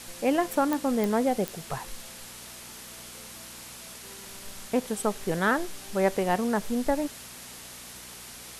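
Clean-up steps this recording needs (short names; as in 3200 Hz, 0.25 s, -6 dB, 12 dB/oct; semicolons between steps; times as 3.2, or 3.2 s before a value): de-click; de-hum 60.6 Hz, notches 4; noise print and reduce 29 dB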